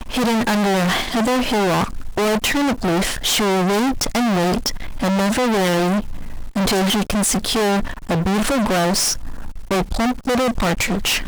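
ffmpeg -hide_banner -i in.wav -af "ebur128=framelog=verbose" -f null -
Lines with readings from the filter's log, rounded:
Integrated loudness:
  I:         -18.8 LUFS
  Threshold: -29.0 LUFS
Loudness range:
  LRA:         1.0 LU
  Threshold: -39.0 LUFS
  LRA low:   -19.5 LUFS
  LRA high:  -18.5 LUFS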